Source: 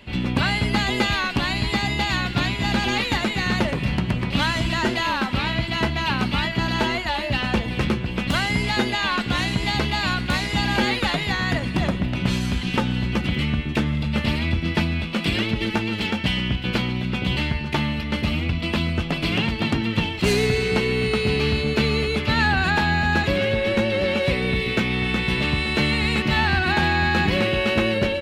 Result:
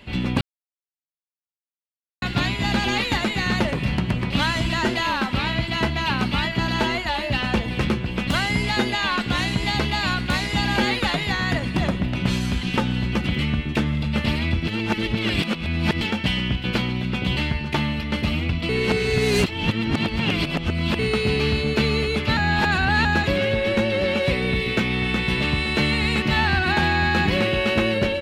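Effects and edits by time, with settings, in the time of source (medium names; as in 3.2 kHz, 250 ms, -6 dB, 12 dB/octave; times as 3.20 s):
0.41–2.22 s: mute
14.67–16.01 s: reverse
18.69–20.99 s: reverse
22.37–23.05 s: reverse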